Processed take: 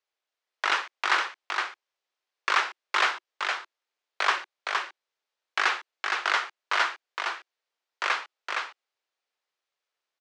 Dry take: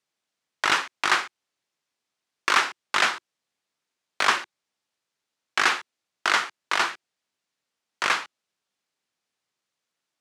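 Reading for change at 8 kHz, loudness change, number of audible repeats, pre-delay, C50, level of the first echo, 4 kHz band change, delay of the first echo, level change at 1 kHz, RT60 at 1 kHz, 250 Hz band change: -7.5 dB, -4.0 dB, 1, none, none, -4.0 dB, -3.0 dB, 0.465 s, -1.5 dB, none, -8.5 dB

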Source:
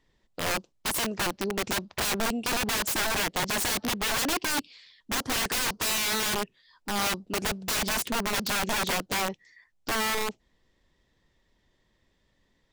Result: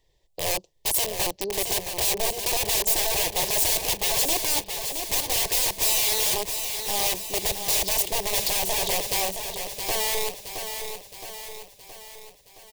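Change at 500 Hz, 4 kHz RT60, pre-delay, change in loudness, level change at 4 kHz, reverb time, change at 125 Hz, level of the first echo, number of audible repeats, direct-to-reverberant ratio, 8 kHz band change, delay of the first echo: +3.5 dB, none, none, +4.5 dB, +3.5 dB, none, -1.0 dB, -7.5 dB, 6, none, +7.0 dB, 0.669 s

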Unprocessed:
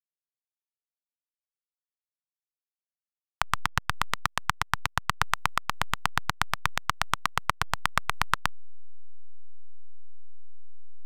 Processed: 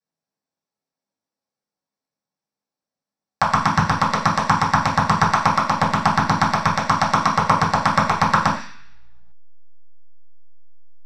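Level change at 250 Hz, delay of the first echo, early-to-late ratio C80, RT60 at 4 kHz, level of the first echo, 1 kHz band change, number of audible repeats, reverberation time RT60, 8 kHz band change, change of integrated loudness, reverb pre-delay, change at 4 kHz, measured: +20.5 dB, none, 10.0 dB, 0.85 s, none, +12.5 dB, none, 0.50 s, +5.5 dB, +11.0 dB, 3 ms, +5.0 dB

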